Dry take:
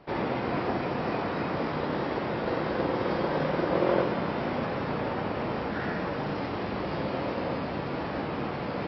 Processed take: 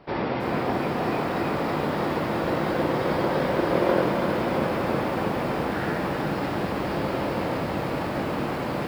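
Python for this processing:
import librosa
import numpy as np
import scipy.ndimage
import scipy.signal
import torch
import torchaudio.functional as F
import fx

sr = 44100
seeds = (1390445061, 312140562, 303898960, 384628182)

y = fx.echo_crushed(x, sr, ms=327, feedback_pct=80, bits=8, wet_db=-6.5)
y = F.gain(torch.from_numpy(y), 2.5).numpy()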